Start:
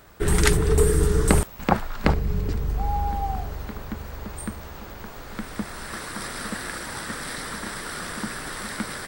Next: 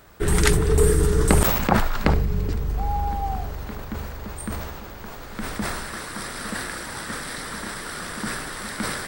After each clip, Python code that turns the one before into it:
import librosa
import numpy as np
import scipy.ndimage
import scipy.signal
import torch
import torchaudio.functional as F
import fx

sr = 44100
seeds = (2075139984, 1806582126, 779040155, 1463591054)

y = fx.sustainer(x, sr, db_per_s=33.0)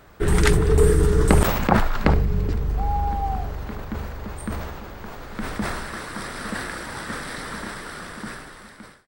y = fx.fade_out_tail(x, sr, length_s=1.55)
y = fx.high_shelf(y, sr, hz=4500.0, db=-8.0)
y = F.gain(torch.from_numpy(y), 1.5).numpy()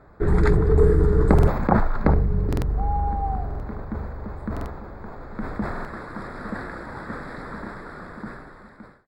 y = scipy.signal.lfilter(np.full(15, 1.0 / 15), 1.0, x)
y = fx.buffer_glitch(y, sr, at_s=(1.34, 2.48, 3.46, 4.52, 5.71), block=2048, repeats=2)